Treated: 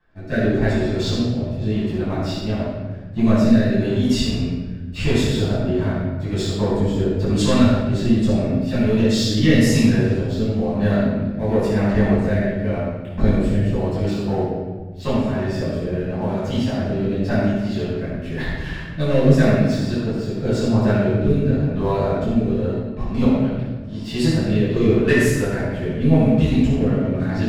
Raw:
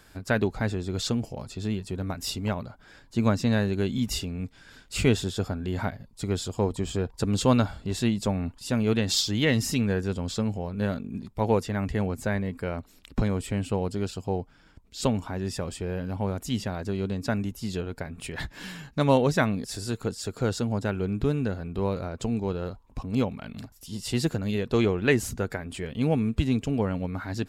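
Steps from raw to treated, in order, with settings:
low-pass that shuts in the quiet parts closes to 2,200 Hz, open at −20 dBFS
leveller curve on the samples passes 2
hollow resonant body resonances 630/1,800 Hz, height 7 dB
rotating-speaker cabinet horn 0.9 Hz
rectangular room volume 1,000 cubic metres, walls mixed, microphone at 9.2 metres
level −13 dB

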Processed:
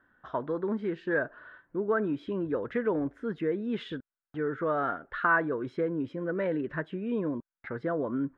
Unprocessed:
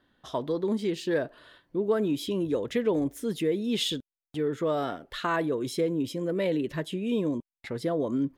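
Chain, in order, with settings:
low-pass with resonance 1,500 Hz, resonance Q 4.3
level −3.5 dB

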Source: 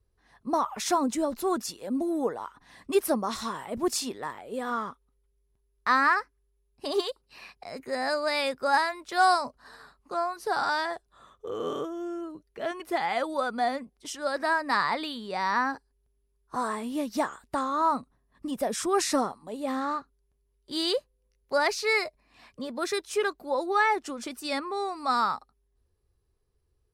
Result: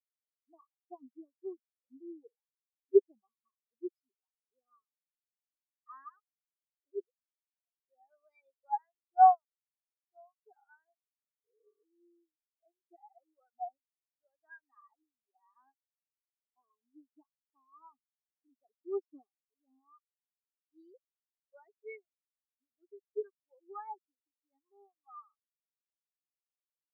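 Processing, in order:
comb filter 2.6 ms, depth 35%
every bin expanded away from the loudest bin 4 to 1
level −2 dB

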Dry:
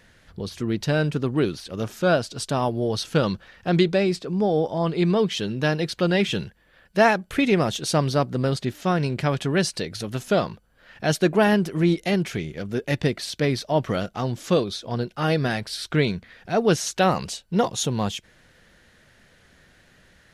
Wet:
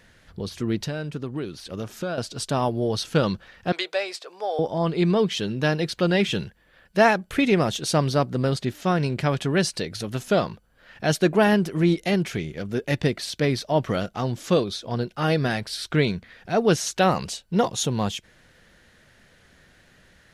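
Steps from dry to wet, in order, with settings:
0:00.83–0:02.18: downward compressor 4 to 1, threshold −28 dBFS, peak gain reduction 11.5 dB
0:03.72–0:04.59: high-pass filter 570 Hz 24 dB per octave

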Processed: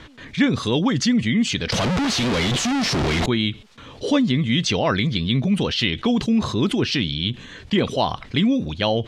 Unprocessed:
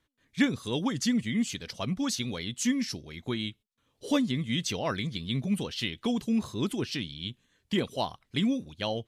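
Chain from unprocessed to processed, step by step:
0:01.72–0:03.26: sign of each sample alone
low-pass filter 4,500 Hz 12 dB per octave
envelope flattener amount 50%
level +5.5 dB

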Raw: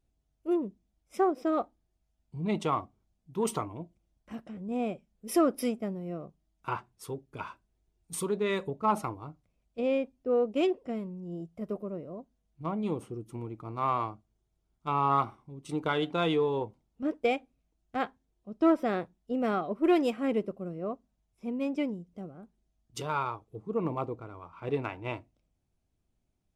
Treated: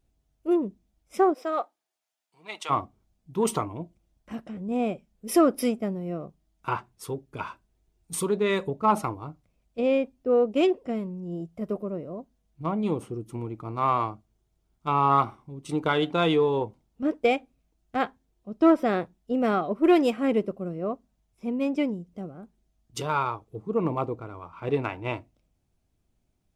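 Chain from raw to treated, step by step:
0:01.33–0:02.69: high-pass filter 560 Hz → 1,300 Hz 12 dB per octave
level +5 dB

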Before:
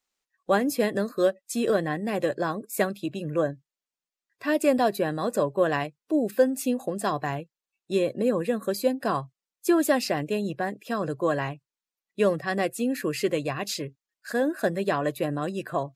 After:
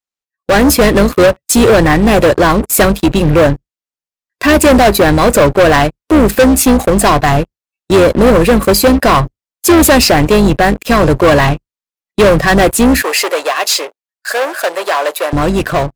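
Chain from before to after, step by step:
sub-octave generator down 2 octaves, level −6 dB
leveller curve on the samples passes 5
0:13.02–0:15.33: high-pass filter 500 Hz 24 dB per octave
automatic gain control gain up to 7 dB

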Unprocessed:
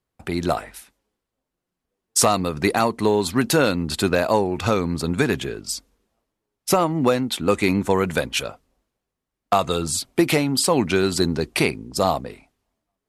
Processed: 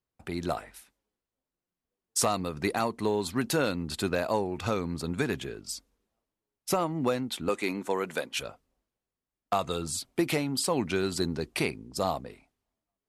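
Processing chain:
0:07.49–0:08.39: high-pass filter 270 Hz 12 dB per octave
level −9 dB

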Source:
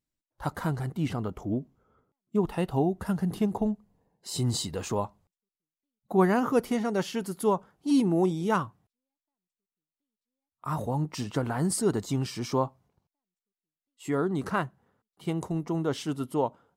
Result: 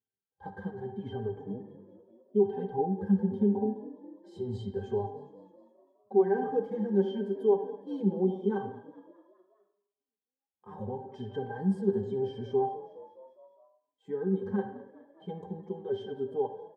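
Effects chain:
high-pass filter 110 Hz
parametric band 510 Hz +10 dB 0.89 octaves
in parallel at −3 dB: brickwall limiter −17 dBFS, peak gain reduction 11.5 dB
on the sum: resonances in every octave G, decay 0.14 s
echo with shifted repeats 206 ms, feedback 60%, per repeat +43 Hz, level −19 dB
on a send at −8.5 dB: convolution reverb RT60 0.75 s, pre-delay 44 ms
on the sum: barber-pole flanger 4.7 ms +0.8 Hz
level +2 dB

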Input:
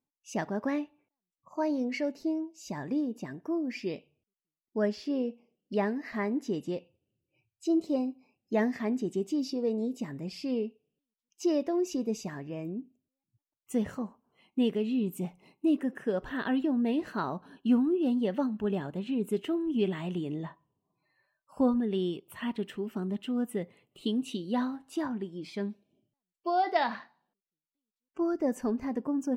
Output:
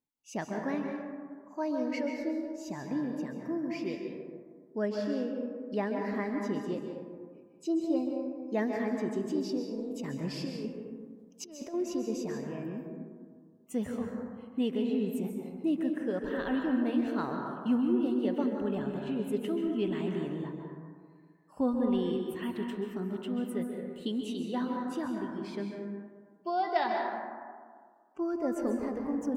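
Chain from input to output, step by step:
0:09.62–0:11.74: compressor whose output falls as the input rises −34 dBFS, ratio −0.5
dense smooth reverb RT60 1.8 s, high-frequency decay 0.3×, pre-delay 120 ms, DRR 1.5 dB
level −3.5 dB

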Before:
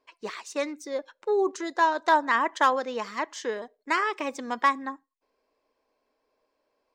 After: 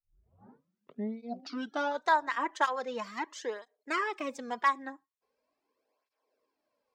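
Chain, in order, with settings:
turntable start at the beginning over 2.08 s
harmonic generator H 4 −35 dB, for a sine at −10 dBFS
through-zero flanger with one copy inverted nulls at 0.41 Hz, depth 4.7 ms
level −3 dB

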